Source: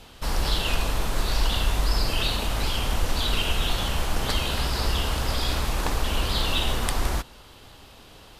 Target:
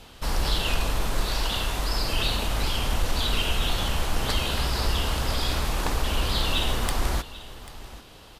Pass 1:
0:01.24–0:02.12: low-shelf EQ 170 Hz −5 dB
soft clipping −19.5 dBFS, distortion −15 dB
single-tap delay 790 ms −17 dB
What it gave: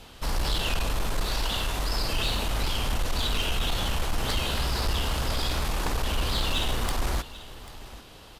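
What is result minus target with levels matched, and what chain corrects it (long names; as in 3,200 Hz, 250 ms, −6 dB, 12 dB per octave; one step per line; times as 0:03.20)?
soft clipping: distortion +15 dB
0:01.24–0:02.12: low-shelf EQ 170 Hz −5 dB
soft clipping −9.5 dBFS, distortion −30 dB
single-tap delay 790 ms −17 dB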